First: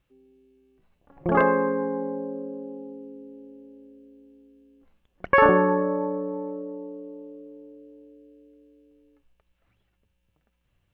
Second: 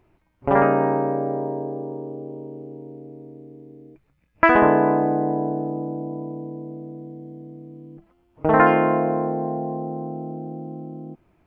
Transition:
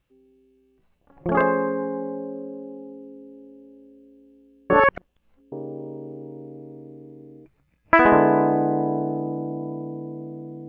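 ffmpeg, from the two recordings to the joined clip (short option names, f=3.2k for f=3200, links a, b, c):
-filter_complex "[0:a]apad=whole_dur=10.68,atrim=end=10.68,asplit=2[a][b];[a]atrim=end=4.702[c];[b]atrim=start=4.698:end=5.522,asetpts=PTS-STARTPTS,areverse[d];[1:a]atrim=start=2.018:end=7.18[e];[c][d]acrossfade=d=0.004:c1=hsin:c2=hsin[f];[f][e]acrossfade=d=0.004:c1=hsin:c2=hsin"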